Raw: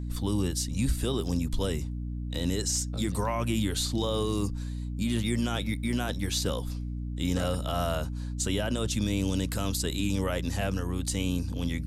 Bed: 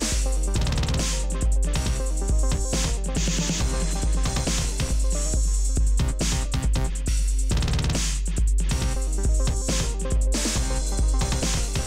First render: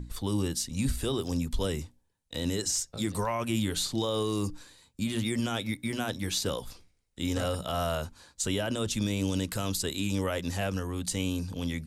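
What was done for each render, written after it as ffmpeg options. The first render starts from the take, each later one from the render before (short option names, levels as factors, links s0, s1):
-af "bandreject=f=60:t=h:w=6,bandreject=f=120:t=h:w=6,bandreject=f=180:t=h:w=6,bandreject=f=240:t=h:w=6,bandreject=f=300:t=h:w=6"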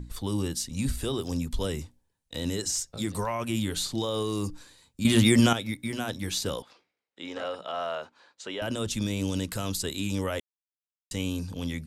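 -filter_complex "[0:a]asettb=1/sr,asplit=3[s0][s1][s2];[s0]atrim=end=6.624[s3];[s1]atrim=start=6.62:end=8.62,asetpts=PTS-STARTPTS,afade=t=in:d=0.004:c=qsin,afade=t=out:st=1.996:d=0.004:c=qsin,highpass=430,lowpass=3100[s4];[s2]atrim=start=8.616[s5];[s3][s4]acrossfade=d=0.004:c1=hsin:c2=qsin[s6];[s6][s5]acrossfade=d=0.004:c1=qsin:c2=hsin,asplit=5[s7][s8][s9][s10][s11];[s7]atrim=end=5.052[s12];[s8]atrim=start=5.048:end=5.532,asetpts=PTS-STARTPTS,volume=3.35[s13];[s9]atrim=start=5.528:end=10.4,asetpts=PTS-STARTPTS,afade=t=out:st=4.868:d=0.004:c=hsin[s14];[s10]atrim=start=10.4:end=11.11,asetpts=PTS-STARTPTS,volume=0[s15];[s11]atrim=start=11.11,asetpts=PTS-STARTPTS,afade=t=in:d=0.004:c=hsin[s16];[s12][s13]acrossfade=d=0.004:c1=hsin:c2=hsin[s17];[s14][s15][s16]concat=n=3:v=0:a=1[s18];[s17][s18]acrossfade=d=0.004:c1=hsin:c2=hsin"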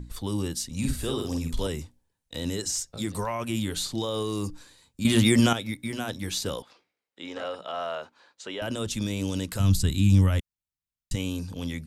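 -filter_complex "[0:a]asettb=1/sr,asplit=3[s0][s1][s2];[s0]atrim=end=0.774[s3];[s1]atrim=start=0.77:end=1.67,asetpts=PTS-STARTPTS,afade=t=in:d=0.004:c=qsin,afade=t=out:st=0.896:d=0.004:c=qsin,asplit=2[s4][s5];[s5]adelay=49,volume=0.631[s6];[s4][s6]amix=inputs=2:normalize=0,atrim=end_sample=39690[s7];[s2]atrim=start=1.666[s8];[s3][s7]acrossfade=d=0.004:c1=hsin:c2=qsin[s9];[s9][s8]acrossfade=d=0.004:c1=qsin:c2=hsin,asplit=3[s10][s11][s12];[s10]afade=t=out:st=9.59:d=0.02[s13];[s11]asubboost=boost=9.5:cutoff=150,afade=t=in:st=9.59:d=0.02,afade=t=out:st=11.14:d=0.02[s14];[s12]afade=t=in:st=11.14:d=0.02[s15];[s13][s14][s15]amix=inputs=3:normalize=0"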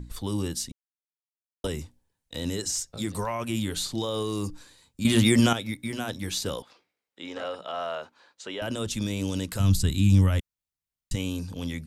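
-filter_complex "[0:a]asplit=3[s0][s1][s2];[s0]atrim=end=0.72,asetpts=PTS-STARTPTS,afade=t=out:st=0.716:d=0.004:c=hsin[s3];[s1]atrim=start=0.72:end=1.64,asetpts=PTS-STARTPTS,volume=0[s4];[s2]atrim=start=1.64,asetpts=PTS-STARTPTS,afade=t=in:d=0.004:c=hsin[s5];[s3][s4][s5]concat=n=3:v=0:a=1"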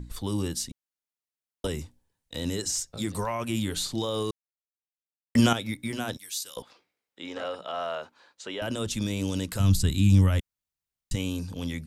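-filter_complex "[0:a]asettb=1/sr,asplit=3[s0][s1][s2];[s0]atrim=end=6.174[s3];[s1]atrim=start=6.17:end=6.57,asetpts=PTS-STARTPTS,afade=t=in:d=0.004:c=qsin,afade=t=out:st=0.396:d=0.004:c=qsin,aderivative[s4];[s2]atrim=start=6.566[s5];[s3][s4]acrossfade=d=0.004:c1=hsin:c2=qsin[s6];[s6][s5]acrossfade=d=0.004:c1=qsin:c2=hsin,asplit=3[s7][s8][s9];[s7]atrim=end=4.31,asetpts=PTS-STARTPTS,afade=t=out:st=4.306:d=0.004:c=hsin[s10];[s8]atrim=start=4.31:end=5.35,asetpts=PTS-STARTPTS,volume=0[s11];[s9]atrim=start=5.35,asetpts=PTS-STARTPTS,afade=t=in:d=0.004:c=hsin[s12];[s10][s11][s12]concat=n=3:v=0:a=1"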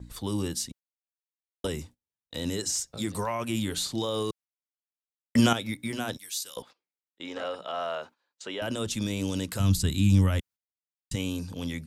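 -af "highpass=f=81:p=1,agate=range=0.0891:threshold=0.00398:ratio=16:detection=peak"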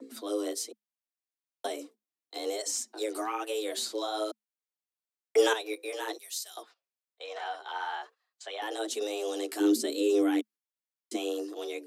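-af "flanger=delay=2.5:depth=9.8:regen=-1:speed=1.1:shape=triangular,afreqshift=210"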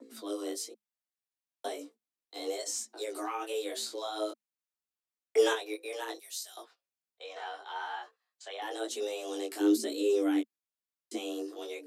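-af "flanger=delay=17:depth=3.8:speed=1"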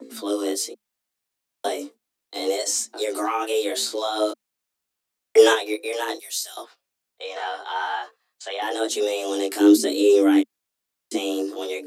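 -af "volume=3.76"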